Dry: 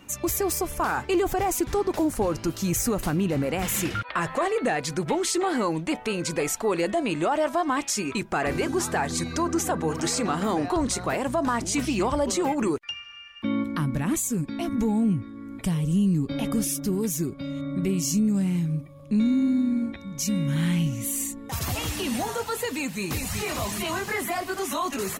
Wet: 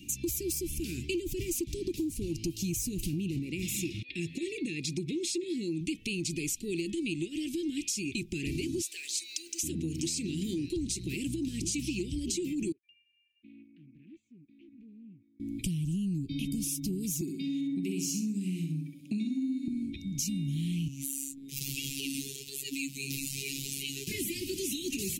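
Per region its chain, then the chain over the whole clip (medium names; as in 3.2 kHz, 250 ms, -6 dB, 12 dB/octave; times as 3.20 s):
3.39–5.81 s: treble shelf 8.7 kHz -9.5 dB + comb of notches 1.5 kHz
8.81–9.63 s: Bessel high-pass 920 Hz, order 6 + word length cut 10-bit, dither none
12.72–15.40 s: low-pass 1.5 kHz 24 dB/octave + differentiator + loudspeaker Doppler distortion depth 0.17 ms
17.21–19.68 s: high-pass 180 Hz 24 dB/octave + peaking EQ 1.3 kHz +12 dB 1.1 oct + feedback delay 65 ms, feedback 29%, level -5 dB
20.88–24.07 s: transient shaper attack -11 dB, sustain -5 dB + robot voice 137 Hz + bass shelf 190 Hz -9 dB
whole clip: Chebyshev band-stop 350–2500 Hz, order 4; dynamic bell 230 Hz, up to -5 dB, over -41 dBFS, Q 4; compression, threshold -33 dBFS; trim +2.5 dB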